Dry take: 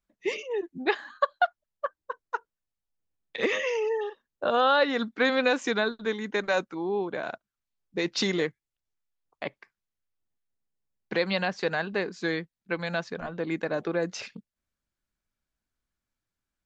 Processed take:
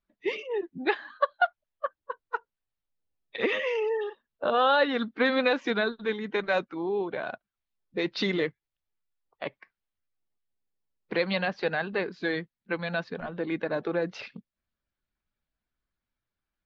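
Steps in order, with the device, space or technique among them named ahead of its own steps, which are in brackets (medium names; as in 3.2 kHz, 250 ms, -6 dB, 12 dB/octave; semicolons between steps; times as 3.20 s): clip after many re-uploads (low-pass 4.3 kHz 24 dB/octave; coarse spectral quantiser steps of 15 dB)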